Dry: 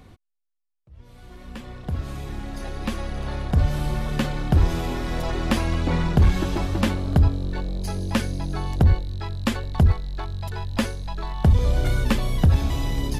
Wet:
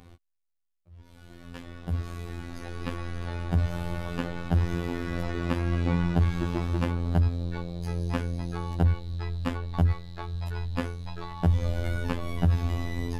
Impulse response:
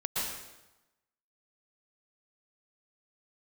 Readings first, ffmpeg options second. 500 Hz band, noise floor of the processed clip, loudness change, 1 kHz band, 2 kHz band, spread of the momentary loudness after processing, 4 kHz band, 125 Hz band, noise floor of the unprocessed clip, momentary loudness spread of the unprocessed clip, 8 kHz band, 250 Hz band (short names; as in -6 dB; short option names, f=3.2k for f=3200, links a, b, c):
-5.0 dB, -72 dBFS, -5.5 dB, -5.5 dB, -5.5 dB, 12 LU, -9.0 dB, -4.5 dB, -77 dBFS, 12 LU, -11.5 dB, -5.0 dB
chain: -filter_complex "[0:a]acrossover=split=1400|3000[a][b][c];[a]acompressor=threshold=-17dB:ratio=4[d];[b]acompressor=threshold=-40dB:ratio=4[e];[c]acompressor=threshold=-50dB:ratio=4[f];[d][e][f]amix=inputs=3:normalize=0,afftfilt=real='hypot(re,im)*cos(PI*b)':imag='0':win_size=2048:overlap=0.75"